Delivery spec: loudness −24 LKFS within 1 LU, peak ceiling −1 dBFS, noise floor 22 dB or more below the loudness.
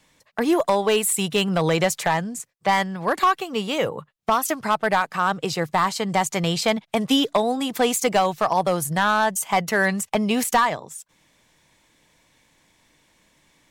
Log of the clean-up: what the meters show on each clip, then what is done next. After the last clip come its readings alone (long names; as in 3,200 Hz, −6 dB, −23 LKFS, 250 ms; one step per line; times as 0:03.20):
share of clipped samples 0.6%; peaks flattened at −11.5 dBFS; integrated loudness −22.0 LKFS; sample peak −11.5 dBFS; target loudness −24.0 LKFS
→ clipped peaks rebuilt −11.5 dBFS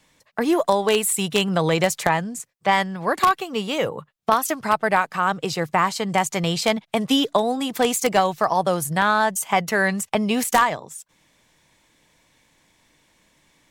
share of clipped samples 0.0%; integrated loudness −21.5 LKFS; sample peak −2.5 dBFS; target loudness −24.0 LKFS
→ level −2.5 dB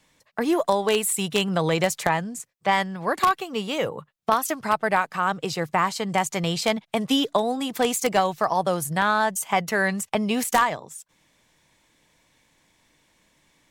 integrated loudness −24.0 LKFS; sample peak −5.0 dBFS; background noise floor −67 dBFS